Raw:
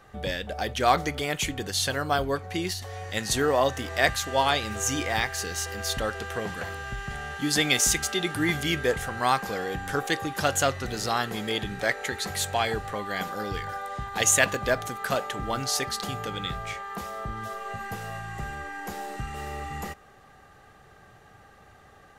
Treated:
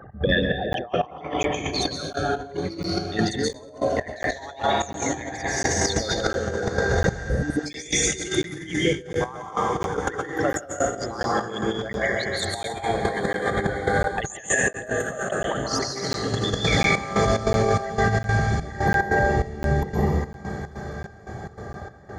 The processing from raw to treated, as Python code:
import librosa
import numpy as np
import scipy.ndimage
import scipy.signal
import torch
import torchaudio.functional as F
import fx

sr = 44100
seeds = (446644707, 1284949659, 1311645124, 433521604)

y = fx.envelope_sharpen(x, sr, power=3.0)
y = scipy.signal.sosfilt(scipy.signal.butter(2, 63.0, 'highpass', fs=sr, output='sos'), y)
y = fx.peak_eq(y, sr, hz=180.0, db=3.0, octaves=1.2)
y = fx.echo_diffused(y, sr, ms=792, feedback_pct=58, wet_db=-16)
y = fx.rev_plate(y, sr, seeds[0], rt60_s=2.1, hf_ratio=0.55, predelay_ms=115, drr_db=-4.0)
y = fx.step_gate(y, sr, bpm=146, pattern='x.xxx..x', floor_db=-12.0, edge_ms=4.5)
y = fx.over_compress(y, sr, threshold_db=-29.0, ratio=-0.5)
y = fx.spec_repair(y, sr, seeds[1], start_s=7.27, length_s=0.36, low_hz=660.0, high_hz=8100.0, source='before')
y = fx.buffer_crackle(y, sr, first_s=0.73, period_s=0.7, block=512, kind='zero')
y = fx.notch_cascade(y, sr, direction='rising', hz=1.1, at=(1.92, 3.97))
y = y * 10.0 ** (5.5 / 20.0)